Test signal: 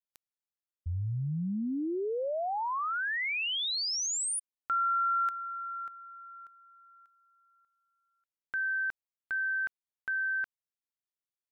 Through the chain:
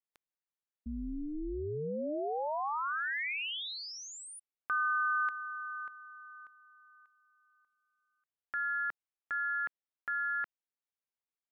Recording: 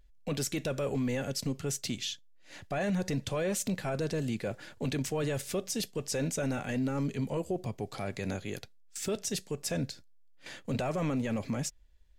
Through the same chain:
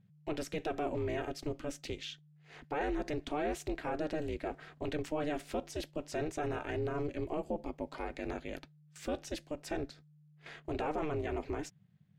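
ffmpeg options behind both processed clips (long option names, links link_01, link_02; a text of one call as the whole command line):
ffmpeg -i in.wav -af "aeval=exprs='val(0)*sin(2*PI*150*n/s)':channel_layout=same,bass=frequency=250:gain=-5,treble=frequency=4000:gain=-14,volume=1dB" out.wav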